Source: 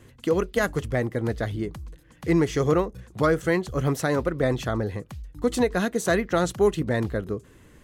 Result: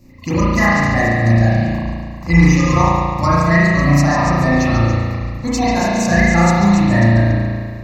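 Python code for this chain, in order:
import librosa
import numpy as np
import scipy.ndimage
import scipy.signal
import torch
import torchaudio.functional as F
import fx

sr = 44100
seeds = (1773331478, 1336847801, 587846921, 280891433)

p1 = fx.spec_quant(x, sr, step_db=30)
p2 = p1 + fx.echo_stepped(p1, sr, ms=140, hz=3900.0, octaves=0.7, feedback_pct=70, wet_db=-3.5, dry=0)
p3 = fx.dynamic_eq(p2, sr, hz=6700.0, q=0.76, threshold_db=-48.0, ratio=4.0, max_db=7)
p4 = fx.rev_spring(p3, sr, rt60_s=1.9, pass_ms=(35,), chirp_ms=75, drr_db=-9.0)
p5 = fx.rider(p4, sr, range_db=3, speed_s=2.0)
p6 = p4 + (p5 * librosa.db_to_amplitude(2.0))
p7 = fx.fixed_phaser(p6, sr, hz=2200.0, stages=8)
p8 = fx.quant_dither(p7, sr, seeds[0], bits=12, dither='none')
y = p8 * librosa.db_to_amplitude(-1.0)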